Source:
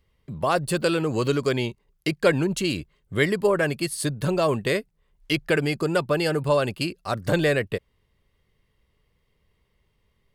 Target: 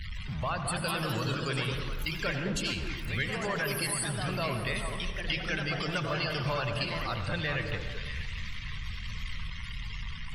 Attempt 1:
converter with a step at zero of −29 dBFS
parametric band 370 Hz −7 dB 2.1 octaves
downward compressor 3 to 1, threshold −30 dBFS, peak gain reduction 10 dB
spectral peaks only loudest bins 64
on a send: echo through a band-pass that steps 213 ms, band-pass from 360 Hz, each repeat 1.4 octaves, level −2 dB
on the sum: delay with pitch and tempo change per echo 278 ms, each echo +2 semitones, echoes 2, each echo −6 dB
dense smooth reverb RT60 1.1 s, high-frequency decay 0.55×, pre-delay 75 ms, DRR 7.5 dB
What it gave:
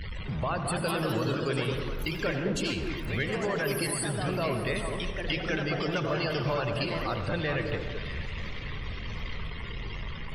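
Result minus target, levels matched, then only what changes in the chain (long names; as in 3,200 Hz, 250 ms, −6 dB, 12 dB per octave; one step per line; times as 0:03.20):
500 Hz band +4.0 dB
change: parametric band 370 Hz −17 dB 2.1 octaves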